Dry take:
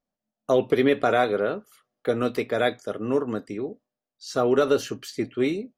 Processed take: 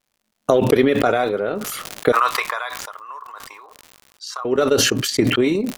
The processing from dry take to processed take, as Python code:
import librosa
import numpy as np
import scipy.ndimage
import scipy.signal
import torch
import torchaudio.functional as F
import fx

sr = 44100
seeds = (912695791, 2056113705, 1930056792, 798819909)

y = fx.recorder_agc(x, sr, target_db=-13.5, rise_db_per_s=15.0, max_gain_db=30)
y = fx.transient(y, sr, attack_db=8, sustain_db=-10)
y = fx.ladder_highpass(y, sr, hz=1000.0, resonance_pct=80, at=(2.12, 4.45))
y = fx.dmg_crackle(y, sr, seeds[0], per_s=160.0, level_db=-52.0)
y = fx.sustainer(y, sr, db_per_s=27.0)
y = F.gain(torch.from_numpy(y), -1.5).numpy()